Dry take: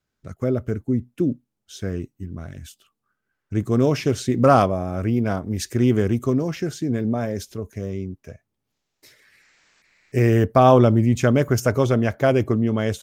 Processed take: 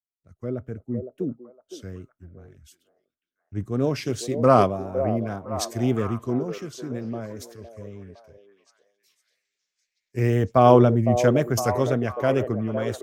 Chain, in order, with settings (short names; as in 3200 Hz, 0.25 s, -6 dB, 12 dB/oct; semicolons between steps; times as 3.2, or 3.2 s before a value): wow and flutter 83 cents; delay with a stepping band-pass 0.51 s, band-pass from 500 Hz, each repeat 0.7 oct, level -3 dB; three-band expander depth 70%; gain -5.5 dB